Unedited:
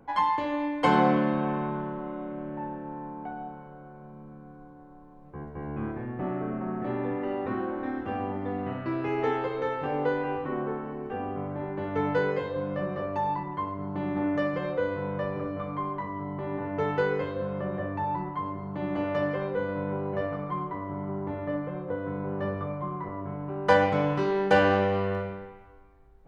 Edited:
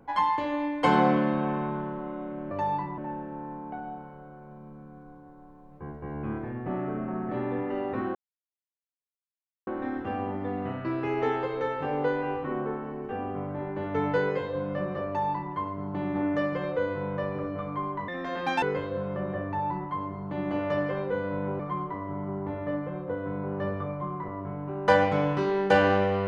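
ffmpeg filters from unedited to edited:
ffmpeg -i in.wav -filter_complex "[0:a]asplit=7[link_01][link_02][link_03][link_04][link_05][link_06][link_07];[link_01]atrim=end=2.512[link_08];[link_02]atrim=start=13.078:end=13.552[link_09];[link_03]atrim=start=2.508:end=7.68,asetpts=PTS-STARTPTS,afade=type=out:start_time=5.168:duration=0.004:curve=hsin,apad=pad_dur=1.52[link_10];[link_04]atrim=start=7.68:end=16.094,asetpts=PTS-STARTPTS,afade=type=in:duration=0.004:curve=hsin[link_11];[link_05]atrim=start=16.09:end=17.07,asetpts=PTS-STARTPTS,asetrate=79380,aresample=44100[link_12];[link_06]atrim=start=17.066:end=20.042[link_13];[link_07]atrim=start=20.398[link_14];[link_08][link_09]acrossfade=duration=0.004:curve1=hsin:curve2=hsin[link_15];[link_10][link_11]concat=n=2:v=0:a=1[link_16];[link_15][link_16]acrossfade=duration=0.004:curve1=hsin:curve2=hsin[link_17];[link_17][link_12]acrossfade=duration=0.004:curve1=hsin:curve2=hsin[link_18];[link_18][link_13]acrossfade=duration=0.004:curve1=hsin:curve2=hsin[link_19];[link_19][link_14]acrossfade=duration=0.004:curve1=hsin:curve2=hsin" out.wav

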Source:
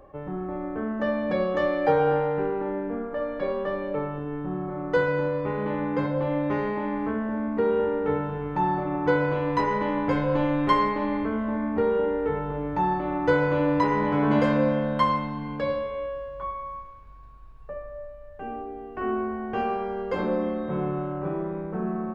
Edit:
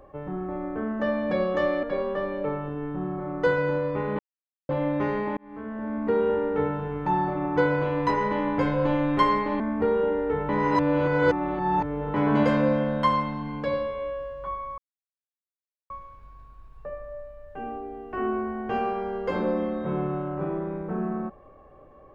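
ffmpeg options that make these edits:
ffmpeg -i in.wav -filter_complex "[0:a]asplit=9[link_01][link_02][link_03][link_04][link_05][link_06][link_07][link_08][link_09];[link_01]atrim=end=1.832[link_10];[link_02]atrim=start=3.328:end=5.69,asetpts=PTS-STARTPTS,afade=type=out:start_time=2.358:duration=0.004:curve=hsin[link_11];[link_03]atrim=start=5.69:end=6.19,asetpts=PTS-STARTPTS,volume=0[link_12];[link_04]atrim=start=6.19:end=6.87,asetpts=PTS-STARTPTS,afade=type=in:duration=0.004:curve=hsin,afade=type=out:start_time=0.676:duration=0.004:curve=hsin[link_13];[link_05]atrim=start=6.87:end=11.102,asetpts=PTS-STARTPTS,afade=type=in:duration=0.7[link_14];[link_06]atrim=start=11.558:end=12.452[link_15];[link_07]atrim=start=12.448:end=14.102,asetpts=PTS-STARTPTS,areverse[link_16];[link_08]atrim=start=14.098:end=16.74,asetpts=PTS-STARTPTS,afade=type=out:start_time=2.638:duration=0.004:curve=hsin,apad=pad_dur=1.12[link_17];[link_09]atrim=start=16.74,asetpts=PTS-STARTPTS,afade=type=in:duration=0.004:curve=hsin[link_18];[link_11][link_12][link_13][link_14]concat=n=4:v=0:a=1[link_19];[link_10][link_19]acrossfade=duration=0.004:curve1=hsin:curve2=hsin[link_20];[link_20][link_15]acrossfade=duration=0.004:curve1=hsin:curve2=hsin[link_21];[link_21][link_16]acrossfade=duration=0.004:curve1=hsin:curve2=hsin[link_22];[link_17][link_18]concat=n=2:v=0:a=1[link_23];[link_22][link_23]acrossfade=duration=0.004:curve1=hsin:curve2=hsin" out.wav

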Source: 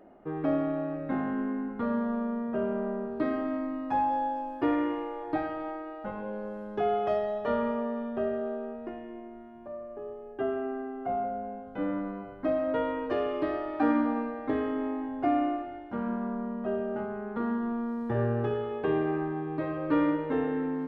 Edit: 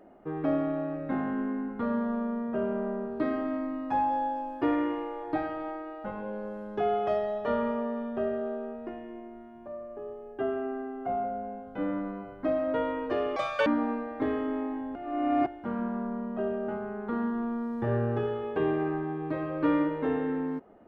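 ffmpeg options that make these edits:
ffmpeg -i in.wav -filter_complex "[0:a]asplit=5[link_01][link_02][link_03][link_04][link_05];[link_01]atrim=end=13.364[link_06];[link_02]atrim=start=13.36:end=13.94,asetpts=PTS-STARTPTS,asetrate=84231,aresample=44100[link_07];[link_03]atrim=start=13.936:end=15.232[link_08];[link_04]atrim=start=15.228:end=15.742,asetpts=PTS-STARTPTS,areverse[link_09];[link_05]atrim=start=15.738[link_10];[link_06][link_07]acrossfade=duration=0.004:curve1=hsin:curve2=hsin[link_11];[link_11][link_08]acrossfade=duration=0.004:curve1=hsin:curve2=hsin[link_12];[link_12][link_09]acrossfade=duration=0.004:curve1=hsin:curve2=hsin[link_13];[link_13][link_10]acrossfade=duration=0.004:curve1=hsin:curve2=hsin" out.wav

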